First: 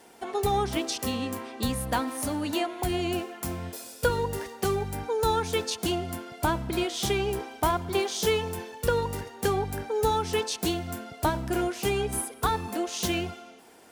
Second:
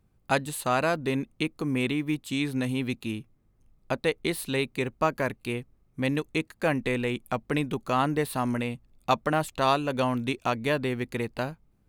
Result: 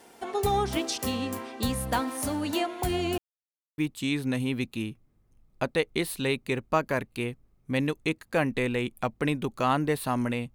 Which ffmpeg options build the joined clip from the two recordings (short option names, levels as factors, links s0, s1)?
-filter_complex "[0:a]apad=whole_dur=10.54,atrim=end=10.54,asplit=2[s0][s1];[s0]atrim=end=3.18,asetpts=PTS-STARTPTS,afade=t=out:st=3.176:d=0.004:c=hsin[s2];[s1]atrim=start=3.18:end=3.78,asetpts=PTS-STARTPTS,volume=0[s3];[1:a]atrim=start=2.07:end=8.83,asetpts=PTS-STARTPTS,afade=t=in:d=0.004:c=hsin[s4];[s2][s3][s4]concat=n=3:v=0:a=1"